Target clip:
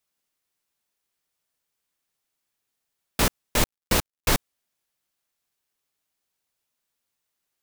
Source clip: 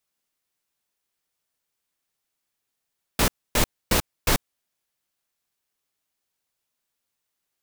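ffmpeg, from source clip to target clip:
-filter_complex "[0:a]asettb=1/sr,asplit=3[a][b][c];[a]atrim=end=3.624[d];[b]atrim=start=3.62:end=4.35,asetpts=PTS-STARTPTS,afade=t=in:d=0.004:c=qsin,afade=t=out:st=0.726:d=0.004:c=qsin,acrusher=bits=9:dc=4:mix=0:aa=0.000001[e];[c]atrim=start=4.346[f];[d][e]acrossfade=d=0.004:c1=hsin:c2=qsin[g];[g][f]acrossfade=d=0.004:c1=qsin:c2=hsin"

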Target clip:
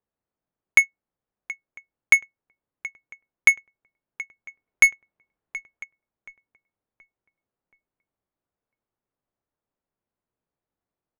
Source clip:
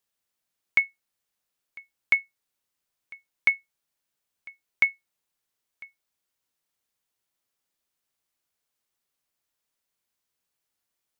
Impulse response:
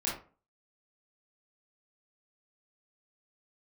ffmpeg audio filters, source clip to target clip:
-filter_complex "[0:a]asettb=1/sr,asplit=3[a][b][c];[a]atrim=end=4.484[d];[b]atrim=start=4.48:end=5.84,asetpts=PTS-STARTPTS,afade=t=in:d=0.004:c=qsin,afade=t=out:st=1.356:d=0.004:c=qsin,aeval=exprs='0.355*(cos(1*acos(clip(val(0)/0.355,-1,1)))-cos(1*PI/2))+0.0398*(cos(5*acos(clip(val(0)/0.355,-1,1)))-cos(5*PI/2))+0.00447*(cos(8*acos(clip(val(0)/0.355,-1,1)))-cos(8*PI/2))':c=same[e];[c]atrim=start=5.836[f];[d][e]acrossfade=d=0.004:c1=hsin:c2=qsin[g];[g][f]acrossfade=d=0.004:c1=qsin:c2=hsin,aecho=1:1:726|1452|2178|2904:0.15|0.0658|0.029|0.0127,adynamicsmooth=sensitivity=4:basefreq=980,volume=6dB"

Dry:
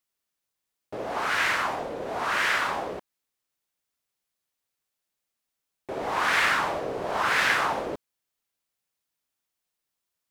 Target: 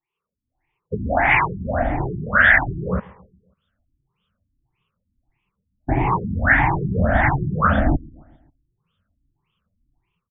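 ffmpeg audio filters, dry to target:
-filter_complex "[0:a]afftfilt=real='re*pow(10,21/40*sin(2*PI*(0.73*log(max(b,1)*sr/1024/100)/log(2)-(1.5)*(pts-256)/sr)))':imag='im*pow(10,21/40*sin(2*PI*(0.73*log(max(b,1)*sr/1024/100)/log(2)-(1.5)*(pts-256)/sr)))':win_size=1024:overlap=0.75,adynamicequalizer=threshold=0.0126:dfrequency=410:dqfactor=1.8:tfrequency=410:tqfactor=1.8:attack=5:release=100:ratio=0.375:range=2:mode=cutabove:tftype=bell,acrossover=split=370|6400[a][b][c];[c]acontrast=83[d];[a][b][d]amix=inputs=3:normalize=0,asubboost=boost=11.5:cutoff=140,dynaudnorm=f=130:g=5:m=12dB,asplit=2[e][f];[f]adelay=135,lowpass=f=3k:p=1,volume=-23dB,asplit=2[g][h];[h]adelay=135,lowpass=f=3k:p=1,volume=0.55,asplit=2[i][j];[j]adelay=135,lowpass=f=3k:p=1,volume=0.55,asplit=2[k][l];[l]adelay=135,lowpass=f=3k:p=1,volume=0.55[m];[g][i][k][m]amix=inputs=4:normalize=0[n];[e][n]amix=inputs=2:normalize=0,afftfilt=real='re*lt(b*sr/1024,360*pow(3700/360,0.5+0.5*sin(2*PI*1.7*pts/sr)))':imag='im*lt(b*sr/1024,360*pow(3700/360,0.5+0.5*sin(2*PI*1.7*pts/sr)))':win_size=1024:overlap=0.75"

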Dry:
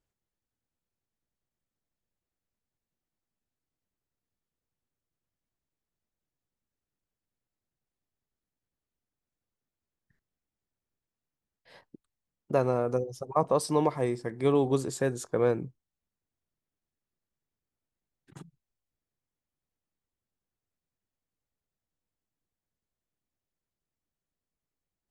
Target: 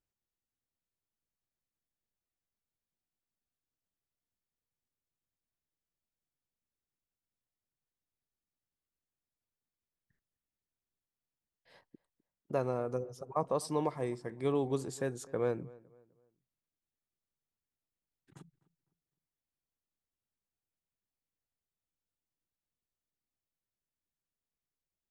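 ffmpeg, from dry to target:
-filter_complex "[0:a]asplit=2[a][b];[b]adelay=254,lowpass=f=2.2k:p=1,volume=-22dB,asplit=2[c][d];[d]adelay=254,lowpass=f=2.2k:p=1,volume=0.36,asplit=2[e][f];[f]adelay=254,lowpass=f=2.2k:p=1,volume=0.36[g];[a][c][e][g]amix=inputs=4:normalize=0,volume=-7dB"

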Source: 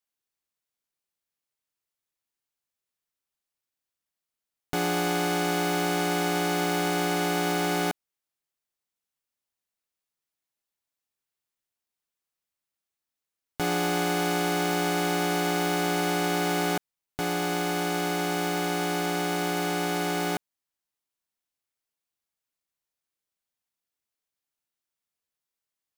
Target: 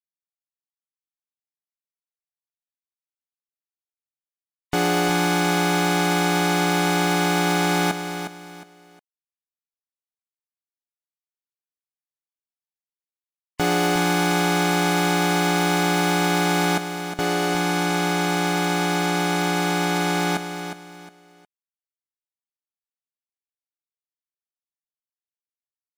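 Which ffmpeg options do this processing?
-filter_complex "[0:a]afftfilt=real='re*gte(hypot(re,im),0.01)':imag='im*gte(hypot(re,im),0.01)':win_size=1024:overlap=0.75,asplit=2[a][b];[b]aecho=0:1:360|720|1080:0.355|0.103|0.0298[c];[a][c]amix=inputs=2:normalize=0,volume=6dB"

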